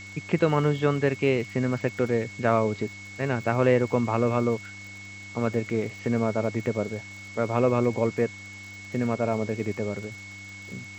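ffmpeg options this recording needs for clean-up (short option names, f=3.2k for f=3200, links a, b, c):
-af "adeclick=t=4,bandreject=f=99.9:t=h:w=4,bandreject=f=199.8:t=h:w=4,bandreject=f=299.7:t=h:w=4,bandreject=f=2.2k:w=30,afwtdn=0.0045"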